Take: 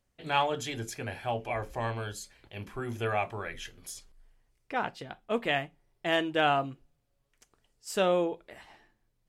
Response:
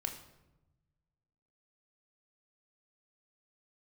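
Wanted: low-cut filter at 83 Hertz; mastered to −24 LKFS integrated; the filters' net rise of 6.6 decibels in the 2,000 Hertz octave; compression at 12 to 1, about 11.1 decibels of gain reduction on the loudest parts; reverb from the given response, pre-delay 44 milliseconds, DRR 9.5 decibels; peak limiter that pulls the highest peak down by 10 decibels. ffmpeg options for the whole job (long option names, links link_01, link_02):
-filter_complex "[0:a]highpass=83,equalizer=frequency=2000:width_type=o:gain=8.5,acompressor=threshold=-29dB:ratio=12,alimiter=level_in=4dB:limit=-24dB:level=0:latency=1,volume=-4dB,asplit=2[link_01][link_02];[1:a]atrim=start_sample=2205,adelay=44[link_03];[link_02][link_03]afir=irnorm=-1:irlink=0,volume=-10dB[link_04];[link_01][link_04]amix=inputs=2:normalize=0,volume=15.5dB"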